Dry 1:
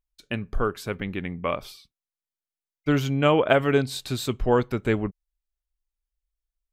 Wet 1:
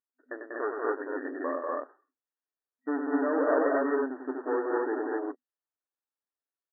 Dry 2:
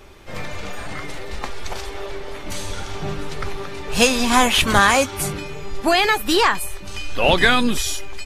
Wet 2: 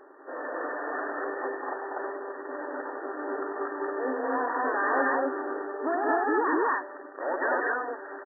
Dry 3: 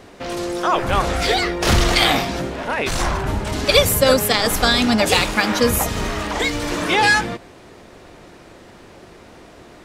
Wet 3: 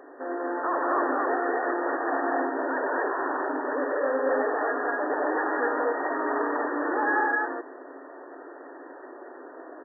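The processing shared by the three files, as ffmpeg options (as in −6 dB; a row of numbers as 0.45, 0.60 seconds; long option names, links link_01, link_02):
-af "aeval=exprs='(tanh(17.8*val(0)+0.6)-tanh(0.6))/17.8':channel_layout=same,aecho=1:1:96.21|192.4|244.9:0.501|0.708|1,afftfilt=real='re*between(b*sr/4096,250,1900)':imag='im*between(b*sr/4096,250,1900)':win_size=4096:overlap=0.75"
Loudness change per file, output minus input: −5.0, −11.5, −9.0 LU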